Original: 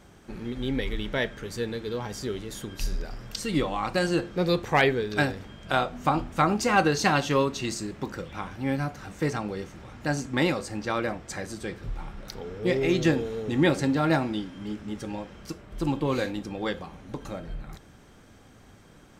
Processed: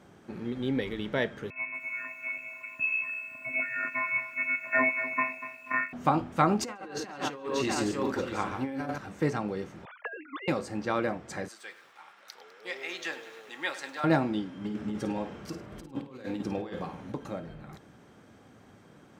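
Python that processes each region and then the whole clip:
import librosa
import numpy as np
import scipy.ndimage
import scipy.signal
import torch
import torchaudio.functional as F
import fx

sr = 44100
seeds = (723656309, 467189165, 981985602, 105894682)

y = fx.chain(x, sr, fx.robotise(hz=391.0),
    fx.freq_invert(carrier_hz=2600),
    fx.echo_crushed(ms=242, feedback_pct=35, bits=8, wet_db=-12.0), at=(1.5, 5.93))
y = fx.chain(y, sr, fx.echo_multitap(ms=(48, 141, 634), db=(-9.5, -8.0, -13.5)),
    fx.over_compress(threshold_db=-29.0, ratio=-0.5),
    fx.peak_eq(hz=160.0, db=-14.5, octaves=0.43), at=(6.61, 8.98))
y = fx.chain(y, sr, fx.sine_speech(),
    fx.highpass(hz=1000.0, slope=12),
    fx.over_compress(threshold_db=-34.0, ratio=-0.5), at=(9.85, 10.48))
y = fx.chain(y, sr, fx.highpass(hz=1200.0, slope=12),
    fx.echo_crushed(ms=101, feedback_pct=80, bits=8, wet_db=-14.5), at=(11.48, 14.04))
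y = fx.chain(y, sr, fx.over_compress(threshold_db=-34.0, ratio=-0.5),
    fx.room_flutter(wall_m=9.0, rt60_s=0.34), at=(14.64, 17.12))
y = scipy.signal.sosfilt(scipy.signal.butter(2, 120.0, 'highpass', fs=sr, output='sos'), y)
y = fx.high_shelf(y, sr, hz=2600.0, db=-8.0)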